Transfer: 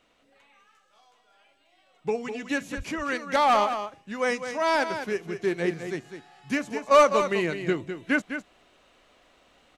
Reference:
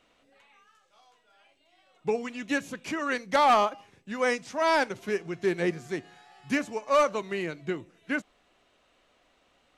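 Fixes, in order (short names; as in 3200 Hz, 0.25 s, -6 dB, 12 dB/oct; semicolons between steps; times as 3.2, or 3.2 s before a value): 2.76–2.88 HPF 140 Hz 24 dB/oct; inverse comb 0.204 s -9 dB; gain 0 dB, from 6.91 s -5.5 dB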